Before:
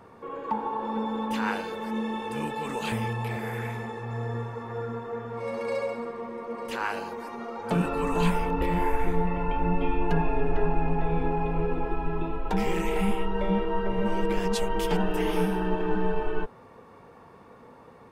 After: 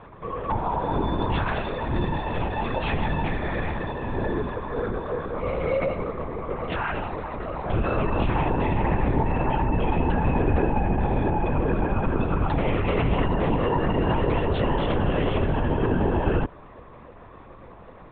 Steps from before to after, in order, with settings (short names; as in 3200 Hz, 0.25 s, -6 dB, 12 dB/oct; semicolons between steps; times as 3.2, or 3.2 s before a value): limiter -20.5 dBFS, peak gain reduction 9 dB; LPC vocoder at 8 kHz whisper; gain +5.5 dB